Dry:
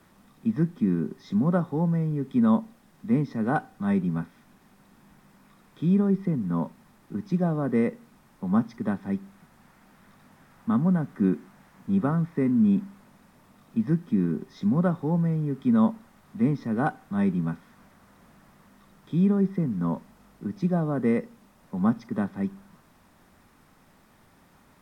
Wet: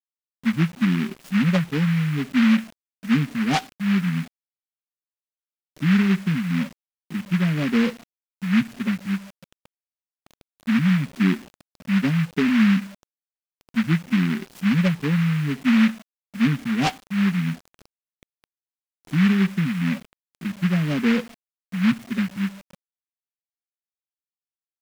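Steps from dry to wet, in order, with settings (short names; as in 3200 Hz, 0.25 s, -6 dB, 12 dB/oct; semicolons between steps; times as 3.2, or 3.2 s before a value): spectral contrast raised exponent 2.2; requantised 8-bit, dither none; noise-modulated delay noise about 1800 Hz, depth 0.17 ms; gain +4 dB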